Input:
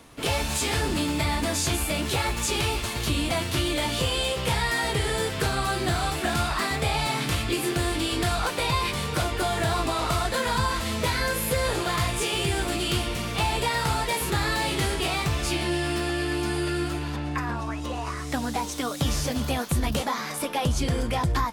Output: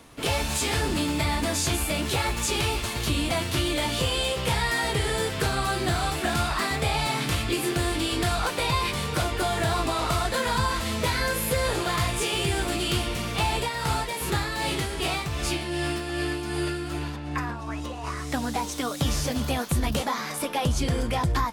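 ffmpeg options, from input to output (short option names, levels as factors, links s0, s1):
-filter_complex "[0:a]asettb=1/sr,asplit=3[s0][s1][s2];[s0]atrim=end=13.554[s3];[s1]atrim=start=13.55:end=18.04,asetpts=PTS-STARTPTS,afade=t=in:d=0.004:c=qsin,afade=t=out:st=4.486:d=0.004:c=qsin,tremolo=f=2.6:d=0.46[s4];[s2]atrim=start=18.036[s5];[s3][s4]acrossfade=d=0.004:c1=hsin:c2=qsin[s6];[s6][s5]acrossfade=d=0.004:c1=qsin:c2=hsin"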